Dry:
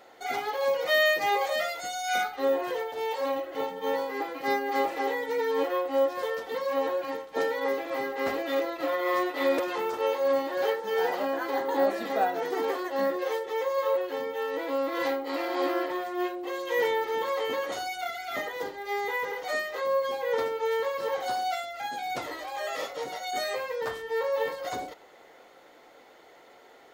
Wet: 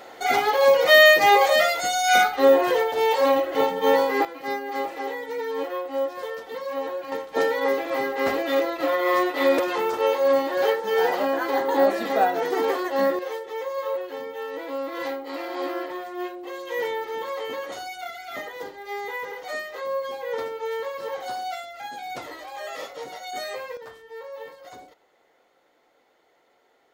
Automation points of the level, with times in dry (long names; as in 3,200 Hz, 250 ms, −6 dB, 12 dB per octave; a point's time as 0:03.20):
+10 dB
from 0:04.25 −1.5 dB
from 0:07.12 +5.5 dB
from 0:13.19 −1.5 dB
from 0:23.77 −10 dB